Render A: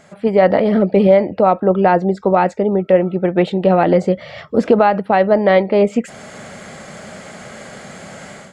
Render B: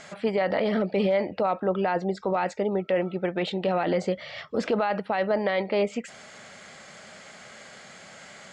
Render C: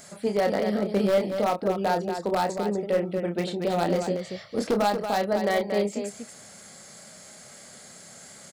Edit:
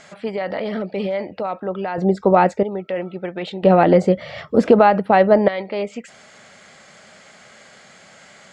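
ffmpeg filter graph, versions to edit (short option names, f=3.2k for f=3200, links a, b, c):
-filter_complex "[0:a]asplit=2[a][b];[1:a]asplit=3[c][d][e];[c]atrim=end=1.982[f];[a]atrim=start=1.978:end=2.632[g];[d]atrim=start=2.628:end=3.632[h];[b]atrim=start=3.628:end=5.482[i];[e]atrim=start=5.478[j];[f][g]acrossfade=d=0.004:c1=hsin:c2=hsin[k];[k][h]acrossfade=d=0.004:c1=hsin:c2=hsin[l];[l][i]acrossfade=d=0.004:c1=hsin:c2=hsin[m];[m][j]acrossfade=d=0.004:c1=hsin:c2=hsin"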